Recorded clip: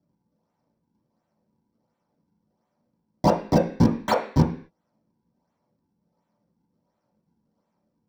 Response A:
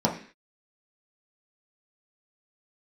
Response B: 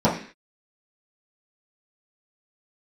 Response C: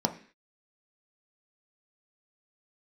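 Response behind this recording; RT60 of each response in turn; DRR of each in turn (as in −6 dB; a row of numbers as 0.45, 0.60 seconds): A; 0.45, 0.45, 0.45 seconds; −2.5, −10.0, 4.5 decibels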